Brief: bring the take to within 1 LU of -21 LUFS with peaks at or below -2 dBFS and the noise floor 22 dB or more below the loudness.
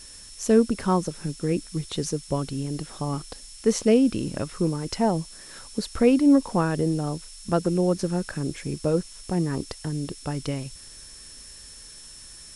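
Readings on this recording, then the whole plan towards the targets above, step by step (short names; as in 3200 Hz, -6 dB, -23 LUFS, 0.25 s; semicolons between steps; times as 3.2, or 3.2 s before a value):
steady tone 5400 Hz; tone level -47 dBFS; noise floor -45 dBFS; noise floor target -48 dBFS; loudness -25.5 LUFS; peak -7.0 dBFS; loudness target -21.0 LUFS
-> notch 5400 Hz, Q 30; noise print and reduce 6 dB; gain +4.5 dB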